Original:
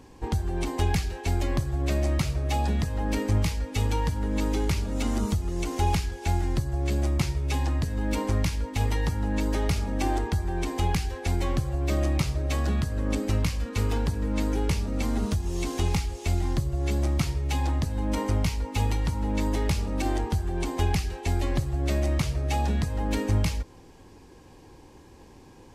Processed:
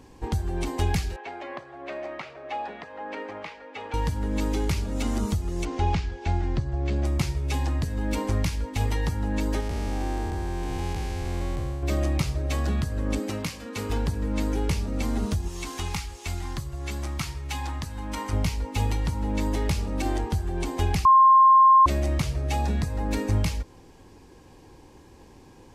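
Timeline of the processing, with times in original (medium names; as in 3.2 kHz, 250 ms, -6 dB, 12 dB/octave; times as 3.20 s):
1.16–3.94 s: Butterworth band-pass 1.1 kHz, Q 0.55
5.65–7.05 s: Gaussian low-pass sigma 1.6 samples
9.60–11.83 s: spectral blur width 399 ms
13.19–13.90 s: high-pass 170 Hz
15.48–18.33 s: resonant low shelf 780 Hz -6.5 dB, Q 1.5
21.05–21.86 s: bleep 1.06 kHz -11.5 dBFS
22.57–23.33 s: band-stop 3.1 kHz, Q 9.2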